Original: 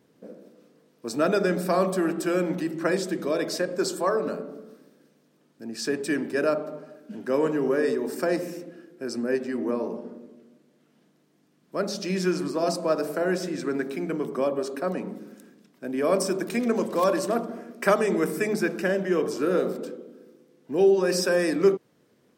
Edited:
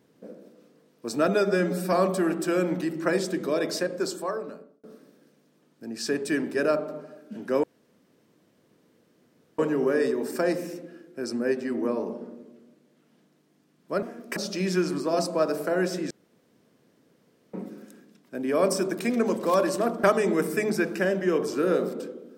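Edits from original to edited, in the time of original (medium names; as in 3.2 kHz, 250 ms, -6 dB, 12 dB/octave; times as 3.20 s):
1.28–1.71 s: stretch 1.5×
3.54–4.62 s: fade out
7.42 s: insert room tone 1.95 s
13.60–15.03 s: room tone
17.53–17.87 s: move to 11.86 s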